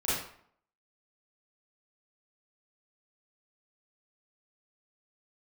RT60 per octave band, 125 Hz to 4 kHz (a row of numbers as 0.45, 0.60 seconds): 0.60, 0.60, 0.60, 0.60, 0.55, 0.45 seconds